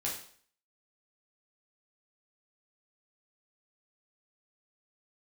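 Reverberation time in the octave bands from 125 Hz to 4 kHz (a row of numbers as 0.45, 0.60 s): 0.50, 0.50, 0.55, 0.50, 0.50, 0.50 s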